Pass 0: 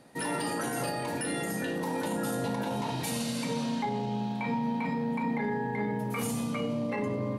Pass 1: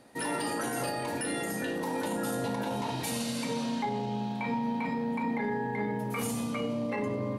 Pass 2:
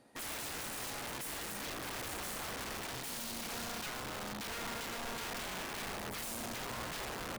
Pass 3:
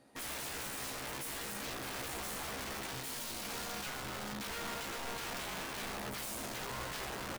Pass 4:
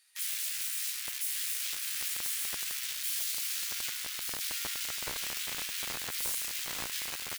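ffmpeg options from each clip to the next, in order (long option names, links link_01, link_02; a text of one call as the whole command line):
ffmpeg -i in.wav -af "equalizer=frequency=160:width=4.1:gain=-7.5" out.wav
ffmpeg -i in.wav -af "aeval=exprs='(mod(28.2*val(0)+1,2)-1)/28.2':channel_layout=same,volume=-7.5dB" out.wav
ffmpeg -i in.wav -filter_complex "[0:a]asplit=2[link_01][link_02];[link_02]adelay=15,volume=-5.5dB[link_03];[link_01][link_03]amix=inputs=2:normalize=0,volume=-1dB" out.wav
ffmpeg -i in.wav -filter_complex "[0:a]acrossover=split=1900[link_01][link_02];[link_01]acrusher=bits=5:mix=0:aa=0.000001[link_03];[link_02]crystalizer=i=0.5:c=0[link_04];[link_03][link_04]amix=inputs=2:normalize=0,aecho=1:1:1180:0.562,volume=5.5dB" out.wav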